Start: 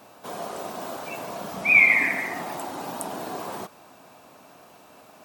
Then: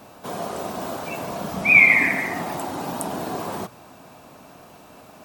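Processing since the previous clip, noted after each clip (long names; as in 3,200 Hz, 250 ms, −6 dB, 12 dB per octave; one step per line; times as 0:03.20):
low-shelf EQ 170 Hz +12 dB
mains-hum notches 60/120 Hz
level +3 dB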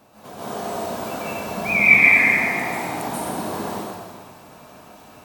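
dense smooth reverb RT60 1.7 s, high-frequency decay 1×, pre-delay 120 ms, DRR −10 dB
level −8.5 dB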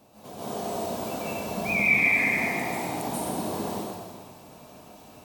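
parametric band 1,500 Hz −8 dB 1.2 octaves
in parallel at +2 dB: brickwall limiter −14.5 dBFS, peak gain reduction 9.5 dB
on the sum: level −9 dB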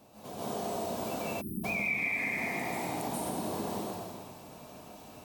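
time-frequency box erased 0:01.41–0:01.64, 390–8,900 Hz
downward compressor 3 to 1, threshold −31 dBFS, peak gain reduction 11 dB
level −1 dB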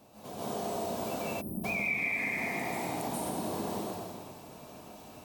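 delay with a band-pass on its return 192 ms, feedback 69%, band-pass 420 Hz, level −18.5 dB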